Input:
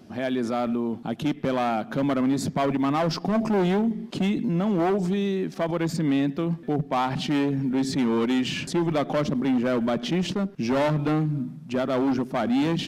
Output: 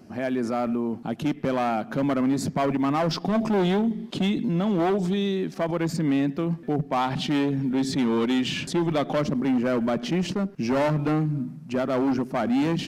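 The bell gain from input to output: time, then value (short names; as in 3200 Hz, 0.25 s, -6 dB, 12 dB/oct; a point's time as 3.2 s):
bell 3500 Hz 0.3 oct
-11.5 dB
from 1.02 s -5 dB
from 3.11 s +6 dB
from 5.51 s -4.5 dB
from 7.01 s +3 dB
from 9.19 s -6 dB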